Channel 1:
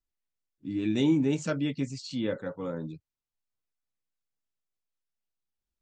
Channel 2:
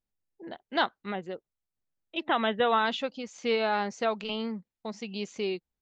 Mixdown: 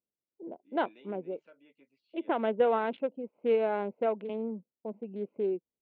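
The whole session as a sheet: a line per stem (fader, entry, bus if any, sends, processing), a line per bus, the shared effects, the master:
-4.0 dB, 0.00 s, no send, high-pass 850 Hz 6 dB/octave; compression 3:1, threshold -36 dBFS, peak gain reduction 6 dB; auto duck -8 dB, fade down 1.40 s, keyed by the second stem
+1.5 dB, 0.00 s, no send, local Wiener filter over 25 samples; tilt EQ -4 dB/octave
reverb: none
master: cabinet simulation 450–2600 Hz, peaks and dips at 790 Hz -7 dB, 1.2 kHz -10 dB, 1.8 kHz -9 dB; tape noise reduction on one side only decoder only

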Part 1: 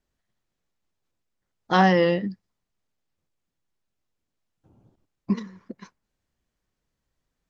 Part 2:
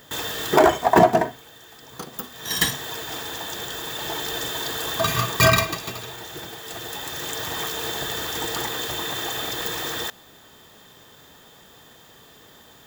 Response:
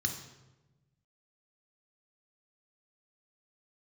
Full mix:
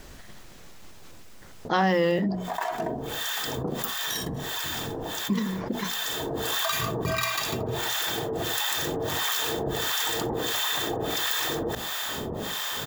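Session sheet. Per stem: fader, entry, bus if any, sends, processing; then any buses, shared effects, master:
-5.5 dB, 0.00 s, no send, hum notches 60/120/180/240 Hz
-3.0 dB, 1.65 s, no send, compression 2.5:1, threshold -37 dBFS, peak gain reduction 18 dB; harmonic tremolo 1.5 Hz, depth 100%, crossover 730 Hz; auto duck -13 dB, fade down 1.10 s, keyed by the first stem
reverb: none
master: hum notches 60/120/180 Hz; level flattener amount 70%

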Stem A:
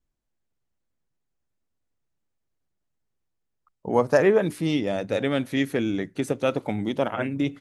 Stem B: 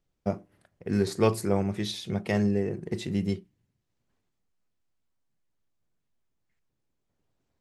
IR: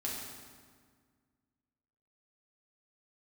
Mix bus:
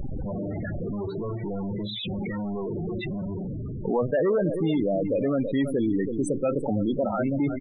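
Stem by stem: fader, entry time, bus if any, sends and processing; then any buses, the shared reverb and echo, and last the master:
0.0 dB, 0.00 s, no send, echo send -12 dB, saturation -19.5 dBFS, distortion -10 dB
-6.0 dB, 0.00 s, no send, no echo send, one-bit comparator; low-pass 3.2 kHz 24 dB/octave; auto duck -7 dB, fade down 0.85 s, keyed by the first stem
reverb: none
echo: delay 327 ms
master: treble shelf 5.4 kHz +5 dB; loudest bins only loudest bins 16; level flattener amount 50%

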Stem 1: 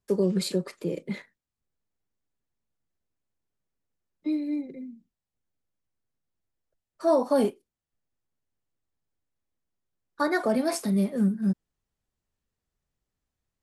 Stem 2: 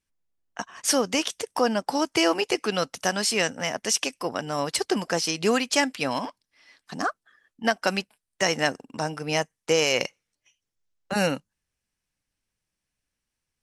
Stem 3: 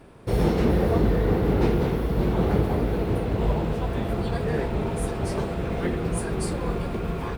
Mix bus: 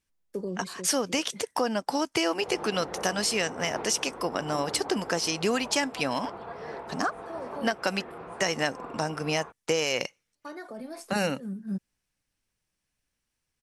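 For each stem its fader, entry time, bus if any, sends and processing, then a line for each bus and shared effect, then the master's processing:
0.0 dB, 0.25 s, no send, peak limiter -18 dBFS, peak gain reduction 5.5 dB; gate -55 dBFS, range -18 dB; auto duck -13 dB, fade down 0.90 s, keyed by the second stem
+1.5 dB, 0.00 s, no send, none
-3.0 dB, 2.15 s, no send, band-pass filter 1 kHz, Q 1.6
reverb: none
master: compression 2.5:1, threshold -25 dBFS, peak gain reduction 7.5 dB

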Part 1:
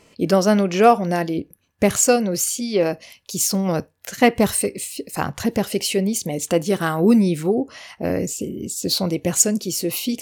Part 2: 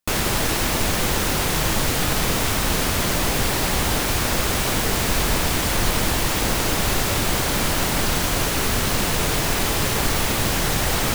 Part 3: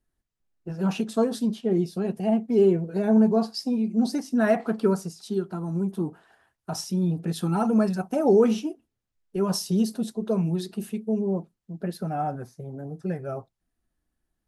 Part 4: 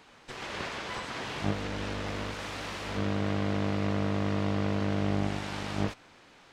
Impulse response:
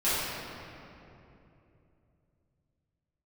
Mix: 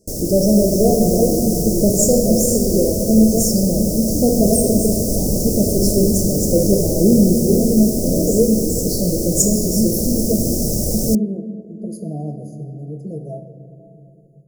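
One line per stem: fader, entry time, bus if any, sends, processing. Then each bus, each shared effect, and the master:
-4.0 dB, 0.00 s, send -11 dB, none
-1.5 dB, 0.00 s, no send, none
-4.5 dB, 0.00 s, send -18.5 dB, rippled EQ curve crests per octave 1.8, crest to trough 17 dB
+0.5 dB, 1.70 s, no send, none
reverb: on, RT60 2.9 s, pre-delay 5 ms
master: Chebyshev band-stop 600–5400 Hz, order 4; level rider gain up to 5 dB

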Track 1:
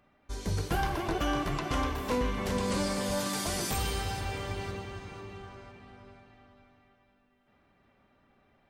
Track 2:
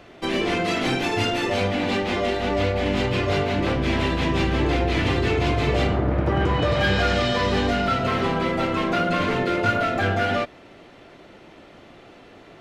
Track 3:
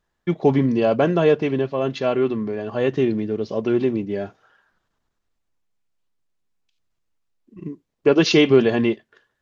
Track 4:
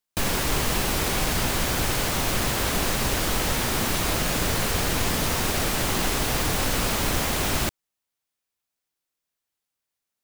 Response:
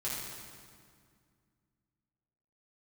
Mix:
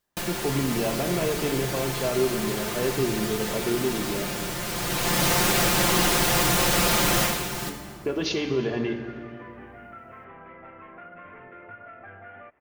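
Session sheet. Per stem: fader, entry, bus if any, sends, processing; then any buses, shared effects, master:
-19.5 dB, 0.05 s, no send, none
-7.0 dB, 2.05 s, no send, inverse Chebyshev low-pass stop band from 4.1 kHz, stop band 40 dB; peaking EQ 240 Hz -10.5 dB 2.8 oct; compression 2.5:1, threshold -40 dBFS, peak gain reduction 13.5 dB
-8.0 dB, 0.00 s, send -7.5 dB, peak limiter -12.5 dBFS, peak gain reduction 8.5 dB
+1.5 dB, 0.00 s, send -18 dB, comb 5.7 ms, depth 77%; auto duck -13 dB, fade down 0.25 s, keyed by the third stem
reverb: on, RT60 2.1 s, pre-delay 4 ms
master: bass shelf 62 Hz -11.5 dB

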